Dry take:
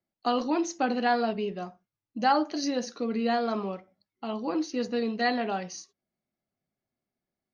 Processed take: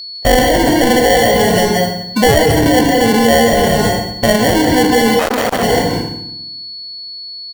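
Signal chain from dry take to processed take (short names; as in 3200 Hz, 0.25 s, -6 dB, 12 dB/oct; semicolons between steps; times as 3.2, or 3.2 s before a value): comb 1.7 ms, depth 53%; sample-and-hold 35×; whine 4400 Hz -49 dBFS; reverb RT60 0.80 s, pre-delay 0.153 s, DRR 3 dB; maximiser +25.5 dB; 5.19–5.63 core saturation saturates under 960 Hz; gain -2.5 dB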